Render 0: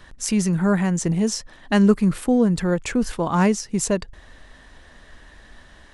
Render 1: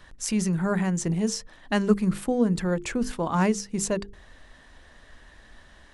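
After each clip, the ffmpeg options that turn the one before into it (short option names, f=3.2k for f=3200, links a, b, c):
-af "bandreject=f=50:t=h:w=6,bandreject=f=100:t=h:w=6,bandreject=f=150:t=h:w=6,bandreject=f=200:t=h:w=6,bandreject=f=250:t=h:w=6,bandreject=f=300:t=h:w=6,bandreject=f=350:t=h:w=6,bandreject=f=400:t=h:w=6,bandreject=f=450:t=h:w=6,volume=-4dB"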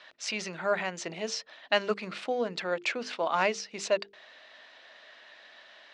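-af "aexciter=amount=3.2:drive=6.8:freq=2.2k,highpass=500,equalizer=f=630:t=q:w=4:g=8,equalizer=f=1.4k:t=q:w=4:g=5,equalizer=f=3.2k:t=q:w=4:g=-4,lowpass=f=3.9k:w=0.5412,lowpass=f=3.9k:w=1.3066,volume=-2dB"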